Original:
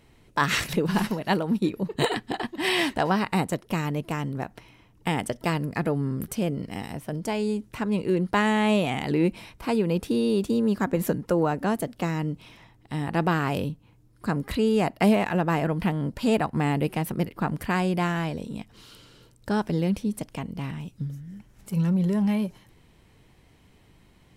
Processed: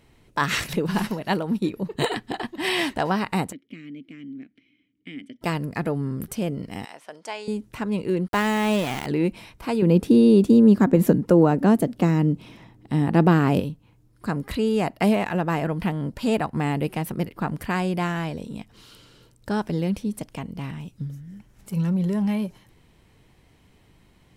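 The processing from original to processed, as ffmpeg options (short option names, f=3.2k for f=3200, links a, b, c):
-filter_complex "[0:a]asplit=3[a][b][c];[a]afade=t=out:st=3.51:d=0.02[d];[b]asplit=3[e][f][g];[e]bandpass=f=270:t=q:w=8,volume=0dB[h];[f]bandpass=f=2.29k:t=q:w=8,volume=-6dB[i];[g]bandpass=f=3.01k:t=q:w=8,volume=-9dB[j];[h][i][j]amix=inputs=3:normalize=0,afade=t=in:st=3.51:d=0.02,afade=t=out:st=5.41:d=0.02[k];[c]afade=t=in:st=5.41:d=0.02[l];[d][k][l]amix=inputs=3:normalize=0,asettb=1/sr,asplit=3[m][n][o];[m]atrim=end=6.854[p];[n]atrim=start=6.85:end=7.48,asetpts=PTS-STARTPTS,afade=t=in:d=0.004:c=qsin,afade=t=out:st=0.626:d=0.004:c=qsin,highpass=700,lowpass=7.2k[q];[o]atrim=start=7.476[r];[p][q]acrossfade=d=0.004:c1=hsin:c2=qsin[s];[s][r]acrossfade=d=0.004:c1=qsin:c2=hsin,asettb=1/sr,asplit=3[t][u][v];[t]atrim=end=8.284[w];[u]atrim=start=8.28:end=9.06,asetpts=PTS-STARTPTS,afade=t=in:d=0.004:c=qsin,afade=t=out:st=0.776:d=0.004:c=qsin,aeval=exprs='val(0)*gte(abs(val(0)),0.0335)':c=same[x];[v]atrim=start=9.056[y];[w][x]acrossfade=d=0.004:c1=hsin:c2=qsin[z];[z][y]acrossfade=d=0.004:c1=qsin:c2=hsin,asettb=1/sr,asplit=3[aa][ab][ac];[aa]atrim=end=9.824[ad];[ab]atrim=start=9.82:end=13.6,asetpts=PTS-STARTPTS,afade=t=in:d=0.004:c=qsin,afade=t=out:st=3.776:d=0.004:c=qsin,equalizer=f=240:t=o:w=2.4:g=10[ae];[ac]atrim=start=13.596[af];[ad][ae]acrossfade=d=0.004:c1=hsin:c2=qsin[ag];[ag][af]acrossfade=d=0.004:c1=qsin:c2=hsin"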